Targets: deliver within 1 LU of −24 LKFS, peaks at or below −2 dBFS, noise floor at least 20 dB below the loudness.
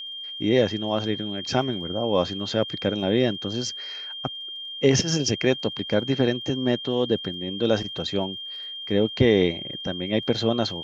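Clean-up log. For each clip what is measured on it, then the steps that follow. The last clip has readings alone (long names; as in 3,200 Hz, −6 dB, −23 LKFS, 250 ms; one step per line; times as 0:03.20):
crackle rate 48 per second; interfering tone 3,200 Hz; level of the tone −33 dBFS; integrated loudness −24.5 LKFS; sample peak −5.0 dBFS; target loudness −24.0 LKFS
→ click removal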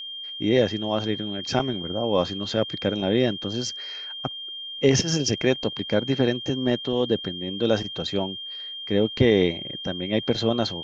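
crackle rate 0.37 per second; interfering tone 3,200 Hz; level of the tone −33 dBFS
→ notch filter 3,200 Hz, Q 30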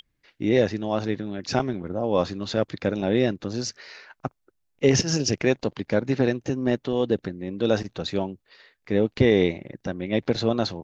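interfering tone none found; integrated loudness −25.0 LKFS; sample peak −5.0 dBFS; target loudness −24.0 LKFS
→ level +1 dB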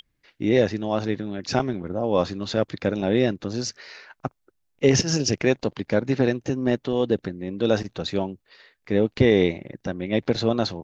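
integrated loudness −24.0 LKFS; sample peak −4.0 dBFS; background noise floor −73 dBFS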